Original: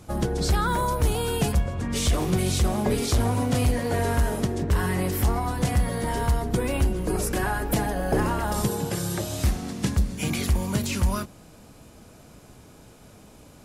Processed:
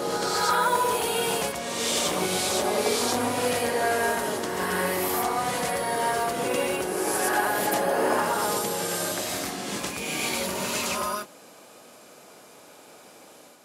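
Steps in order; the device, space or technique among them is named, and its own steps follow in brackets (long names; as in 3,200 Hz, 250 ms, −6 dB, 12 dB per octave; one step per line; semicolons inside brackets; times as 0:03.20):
ghost voice (reversed playback; convolution reverb RT60 1.4 s, pre-delay 70 ms, DRR −3.5 dB; reversed playback; high-pass filter 430 Hz 12 dB per octave)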